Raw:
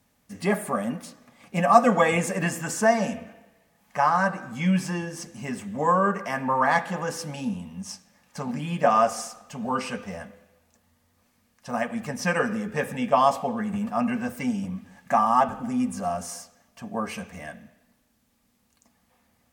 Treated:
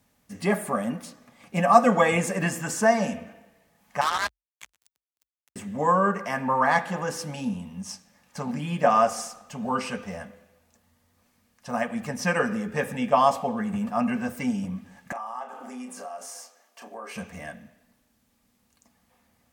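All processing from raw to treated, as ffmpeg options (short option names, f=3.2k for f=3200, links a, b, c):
-filter_complex "[0:a]asettb=1/sr,asplit=3[a][b][c];[a]atrim=end=4.014[d];[b]atrim=start=4.01:end=5.56,asetpts=PTS-STARTPTS,afade=t=in:d=0.004:c=qsin,afade=t=out:st=1.546:d=0.004:c=qsin,highpass=1.2k,acrusher=bits=3:mix=0:aa=0.5,afreqshift=44[e];[c]atrim=start=5.556[f];[d][e]acrossfade=d=0.004:c1=hsin:c2=qsin[g];[g][f]acrossfade=d=0.004:c1=qsin:c2=hsin,asettb=1/sr,asplit=3[h][i][j];[h]atrim=end=15.124[k];[i]atrim=start=15.12:end=17.16,asetpts=PTS-STARTPTS,afade=t=in:d=0.004:c=qsin,afade=t=out:st=2.036:d=0.004:c=qsin,highpass=f=340:w=0.5412,highpass=f=340:w=1.3066,acompressor=threshold=-38dB:ratio=3:attack=3.2:release=140:knee=1:detection=peak,asplit=2[l][m];[m]adelay=32,volume=-7dB[n];[l][n]amix=inputs=2:normalize=0,atrim=end_sample=89964[o];[j]atrim=start=17.156[p];[k][o]acrossfade=d=0.004:c1=hsin:c2=qsin[q];[q][p]acrossfade=d=0.004:c1=qsin:c2=hsin"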